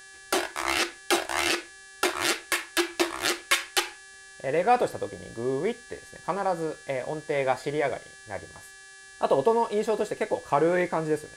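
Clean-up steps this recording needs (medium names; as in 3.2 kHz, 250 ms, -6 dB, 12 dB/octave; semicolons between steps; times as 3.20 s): de-hum 389.4 Hz, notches 26; band-stop 1.7 kHz, Q 30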